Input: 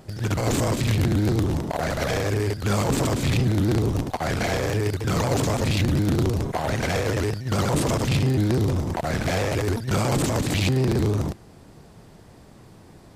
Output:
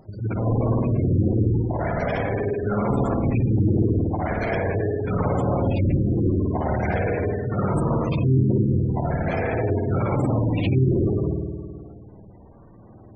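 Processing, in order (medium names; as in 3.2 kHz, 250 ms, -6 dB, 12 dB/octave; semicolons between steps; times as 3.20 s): spring tank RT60 1.9 s, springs 53 ms, chirp 40 ms, DRR -1.5 dB; spectral gate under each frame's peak -20 dB strong; trim -2.5 dB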